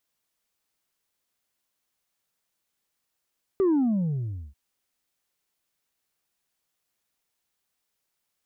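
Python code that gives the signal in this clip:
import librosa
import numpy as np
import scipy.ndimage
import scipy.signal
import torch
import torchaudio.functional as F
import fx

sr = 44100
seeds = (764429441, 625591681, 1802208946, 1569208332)

y = fx.sub_drop(sr, level_db=-19.0, start_hz=400.0, length_s=0.94, drive_db=2.0, fade_s=0.84, end_hz=65.0)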